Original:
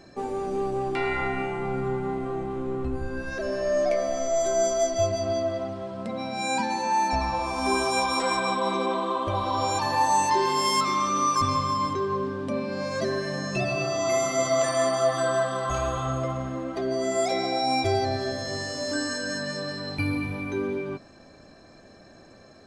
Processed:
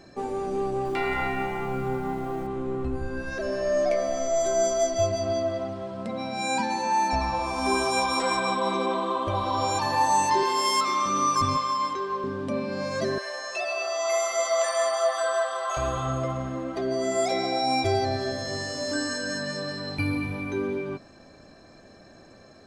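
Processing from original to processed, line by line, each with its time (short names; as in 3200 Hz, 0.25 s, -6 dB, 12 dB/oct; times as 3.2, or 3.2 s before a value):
0.67–2.47 lo-fi delay 0.181 s, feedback 35%, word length 8-bit, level -9.5 dB
10.43–11.06 HPF 310 Hz
11.57–12.24 weighting filter A
13.18–15.77 HPF 550 Hz 24 dB/oct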